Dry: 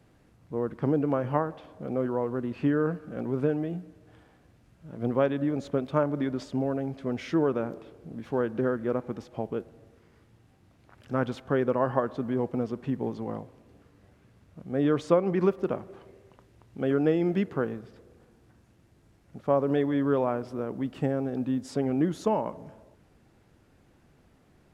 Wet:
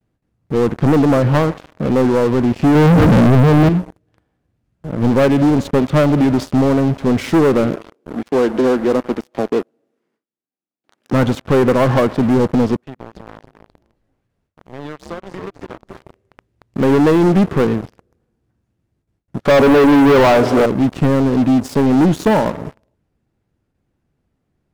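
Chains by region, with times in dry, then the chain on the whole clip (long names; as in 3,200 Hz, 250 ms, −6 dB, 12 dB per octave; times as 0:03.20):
0:02.75–0:03.69: low-shelf EQ 200 Hz +12 dB + envelope flattener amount 100%
0:07.76–0:11.13: high-pass filter 230 Hz 24 dB per octave + saturating transformer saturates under 620 Hz
0:12.76–0:15.91: low-shelf EQ 320 Hz −11.5 dB + echo with shifted repeats 272 ms, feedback 44%, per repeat −76 Hz, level −8.5 dB + downward compressor 2.5 to 1, threshold −50 dBFS
0:19.45–0:20.66: comb filter 7 ms, depth 35% + mid-hump overdrive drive 23 dB, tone 1,600 Hz, clips at −8.5 dBFS
whole clip: noise gate with hold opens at −52 dBFS; low-shelf EQ 320 Hz +6.5 dB; leveller curve on the samples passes 5; level −3 dB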